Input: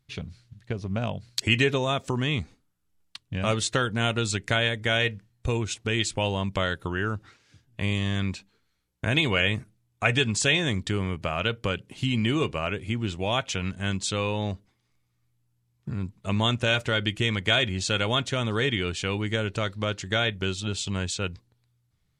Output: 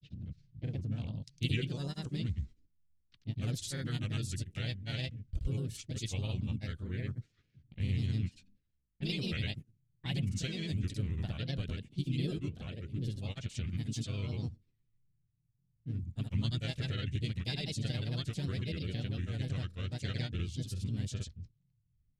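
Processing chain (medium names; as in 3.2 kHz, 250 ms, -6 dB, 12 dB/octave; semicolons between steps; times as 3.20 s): harmony voices +4 st -5 dB, +5 st -12 dB; amplifier tone stack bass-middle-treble 10-0-1; granulator, pitch spread up and down by 3 st; level-controlled noise filter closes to 2.1 kHz, open at -42 dBFS; trim +7 dB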